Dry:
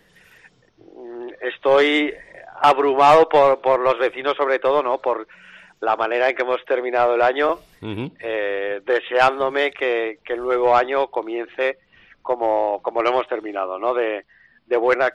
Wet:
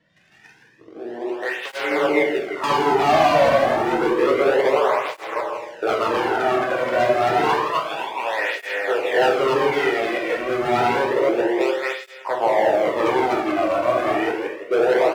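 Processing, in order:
delay that plays each chunk backwards 159 ms, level −1 dB
low-pass filter 4,700 Hz 12 dB per octave
treble cut that deepens with the level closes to 1,300 Hz, closed at −12.5 dBFS
0:07.44–0:08.39: high-pass with resonance 890 Hz, resonance Q 3.8
in parallel at −3 dB: downward compressor, threshold −29 dBFS, peak gain reduction 20 dB
on the sum: leveller curve on the samples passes 2
0:03.58–0:04.43: frequency shifter −25 Hz
0:06.11–0:06.76: high shelf with overshoot 1,700 Hz −6 dB, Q 3
hard clipping −8 dBFS, distortion −13 dB
on a send: single-tap delay 165 ms −9 dB
on the sum: dense smooth reverb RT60 0.97 s, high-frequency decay 0.95×, DRR −1 dB
through-zero flanger with one copy inverted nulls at 0.29 Hz, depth 2.5 ms
level −7.5 dB

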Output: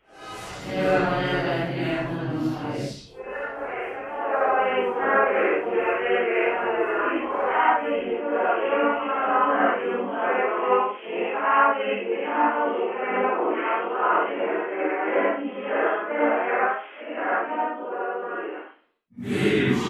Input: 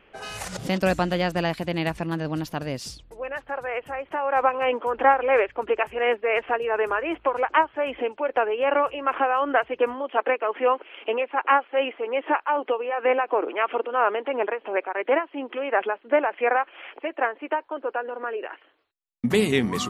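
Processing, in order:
random phases in long frames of 200 ms
dynamic equaliser 1,700 Hz, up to +4 dB, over −34 dBFS, Q 1.1
pitch-shifted copies added −4 semitones −5 dB
convolution reverb RT60 0.35 s, pre-delay 77 ms, DRR −5.5 dB
level −8.5 dB

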